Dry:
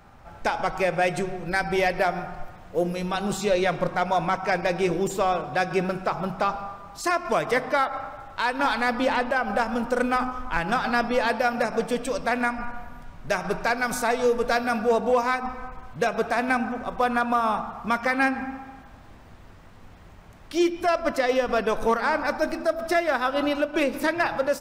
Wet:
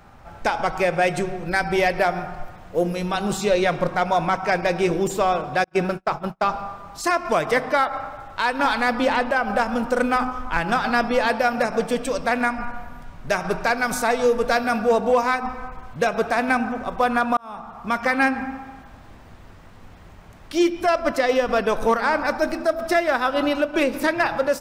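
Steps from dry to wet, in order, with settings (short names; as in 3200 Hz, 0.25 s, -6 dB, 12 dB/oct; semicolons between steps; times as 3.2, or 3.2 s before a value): 5.64–6.46 gate -27 dBFS, range -39 dB; 17.37–18.07 fade in; gain +3 dB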